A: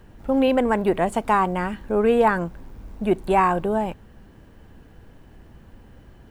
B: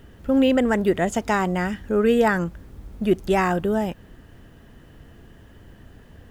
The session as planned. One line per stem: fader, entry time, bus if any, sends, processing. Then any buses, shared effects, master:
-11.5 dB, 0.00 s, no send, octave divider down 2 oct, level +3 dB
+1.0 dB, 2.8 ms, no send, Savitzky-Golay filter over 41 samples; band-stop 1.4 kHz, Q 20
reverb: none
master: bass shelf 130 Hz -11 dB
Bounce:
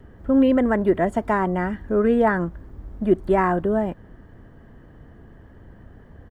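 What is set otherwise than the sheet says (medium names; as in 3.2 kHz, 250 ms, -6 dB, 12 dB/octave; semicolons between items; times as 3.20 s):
stem A: missing octave divider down 2 oct, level +3 dB; master: missing bass shelf 130 Hz -11 dB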